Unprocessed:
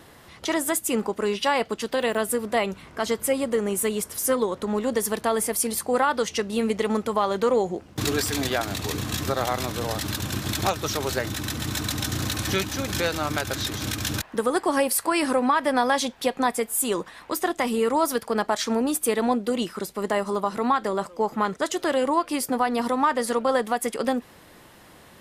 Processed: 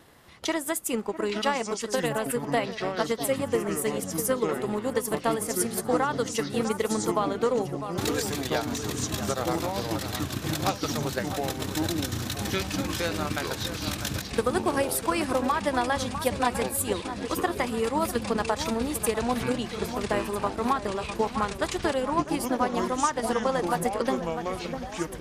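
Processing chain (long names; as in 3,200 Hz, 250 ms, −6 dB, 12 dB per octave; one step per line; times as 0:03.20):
delay that swaps between a low-pass and a high-pass 651 ms, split 1,700 Hz, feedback 64%, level −8 dB
transient designer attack +6 dB, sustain −3 dB
delay with pitch and tempo change per echo 638 ms, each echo −7 semitones, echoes 2, each echo −6 dB
level −6 dB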